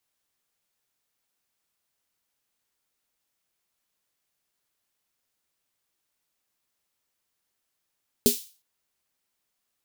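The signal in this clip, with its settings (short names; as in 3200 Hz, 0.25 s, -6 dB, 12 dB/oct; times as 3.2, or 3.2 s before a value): snare drum length 0.36 s, tones 240 Hz, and 410 Hz, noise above 3200 Hz, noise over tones -3.5 dB, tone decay 0.14 s, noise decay 0.38 s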